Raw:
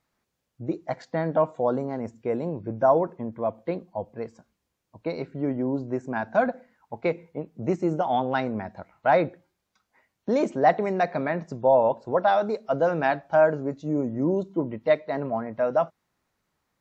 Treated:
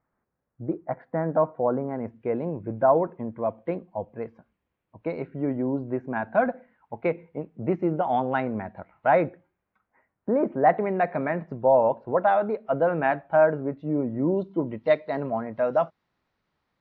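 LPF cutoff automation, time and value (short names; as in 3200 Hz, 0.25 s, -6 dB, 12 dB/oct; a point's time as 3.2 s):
LPF 24 dB/oct
1.61 s 1700 Hz
2.17 s 2800 Hz
9.16 s 2800 Hz
10.4 s 1600 Hz
10.83 s 2600 Hz
13.78 s 2600 Hz
14.74 s 4700 Hz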